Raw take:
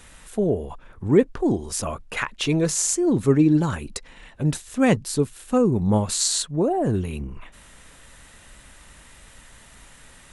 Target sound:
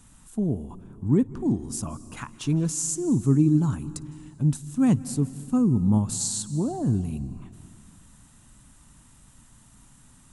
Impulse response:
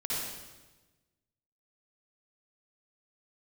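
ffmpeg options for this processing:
-filter_complex "[0:a]equalizer=f=125:t=o:w=1:g=8,equalizer=f=250:t=o:w=1:g=8,equalizer=f=500:t=o:w=1:g=-11,equalizer=f=1k:t=o:w=1:g=3,equalizer=f=2k:t=o:w=1:g=-10,equalizer=f=4k:t=o:w=1:g=-4,equalizer=f=8k:t=o:w=1:g=4,asplit=2[a][b];[1:a]atrim=start_sample=2205,asetrate=23814,aresample=44100,adelay=56[c];[b][c]afir=irnorm=-1:irlink=0,volume=-27dB[d];[a][d]amix=inputs=2:normalize=0,volume=-7dB"

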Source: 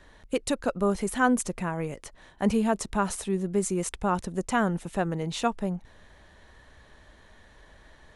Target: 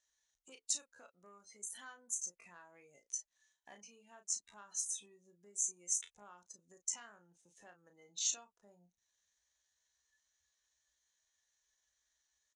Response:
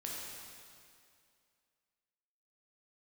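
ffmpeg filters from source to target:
-filter_complex "[0:a]afftdn=nr=22:nf=-39,acompressor=threshold=-36dB:ratio=12,asoftclip=type=tanh:threshold=-25dB,bandpass=f=6.4k:t=q:w=5.8:csg=0,atempo=0.65,asplit=2[a][b];[b]adelay=34,volume=-8dB[c];[a][c]amix=inputs=2:normalize=0,volume=17dB"

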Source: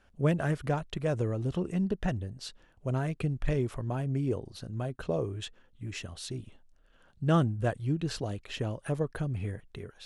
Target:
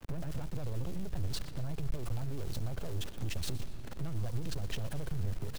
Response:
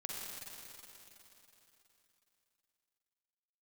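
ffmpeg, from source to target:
-filter_complex "[0:a]acompressor=threshold=-29dB:ratio=10,tiltshelf=f=1.5k:g=8,acrusher=bits=6:dc=4:mix=0:aa=0.000001,agate=range=-13dB:threshold=-53dB:ratio=16:detection=peak,atempo=1.8,alimiter=level_in=9.5dB:limit=-24dB:level=0:latency=1:release=47,volume=-9.5dB,asoftclip=type=tanh:threshold=-37dB,asplit=5[a][b][c][d][e];[b]adelay=120,afreqshift=-120,volume=-16.5dB[f];[c]adelay=240,afreqshift=-240,volume=-23.6dB[g];[d]adelay=360,afreqshift=-360,volume=-30.8dB[h];[e]adelay=480,afreqshift=-480,volume=-37.9dB[i];[a][f][g][h][i]amix=inputs=5:normalize=0,asplit=2[j][k];[1:a]atrim=start_sample=2205[l];[k][l]afir=irnorm=-1:irlink=0,volume=-16.5dB[m];[j][m]amix=inputs=2:normalize=0,aeval=exprs='max(val(0),0)':c=same,acrossover=split=130|3000[n][o][p];[o]acompressor=threshold=-56dB:ratio=5[q];[n][q][p]amix=inputs=3:normalize=0,volume=12.5dB"

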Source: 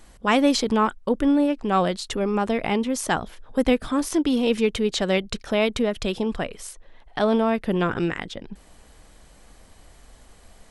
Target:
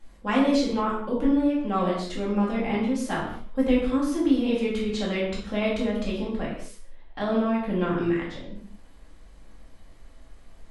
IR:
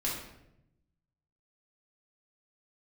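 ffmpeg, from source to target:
-filter_complex "[0:a]highshelf=f=5.3k:g=-8[a];[1:a]atrim=start_sample=2205,afade=t=out:st=0.3:d=0.01,atrim=end_sample=13671[b];[a][b]afir=irnorm=-1:irlink=0,volume=-9dB"

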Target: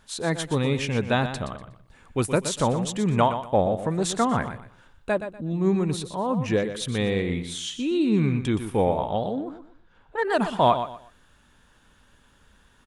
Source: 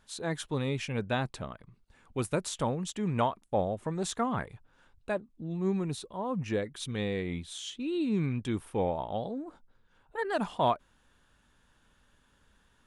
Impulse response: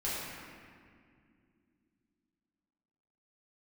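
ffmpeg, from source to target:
-filter_complex "[0:a]aecho=1:1:121|242|363:0.316|0.0822|0.0214,asettb=1/sr,asplit=3[a][b][c];[a]atrim=end=9.354[d];[b]atrim=start=9.35:end=10.23,asetpts=PTS-STARTPTS,afade=t=in:d=0.004:c=qsin,afade=t=out:st=0.876:d=0.004:c=qsin,adynamicsmooth=sensitivity=5.5:basefreq=5.8k[e];[c]atrim=start=10.226[f];[d][e]acrossfade=d=0.004:c1=hsin:c2=qsin[g];[g][f]acrossfade=d=0.004:c1=qsin:c2=hsin,volume=7.5dB"

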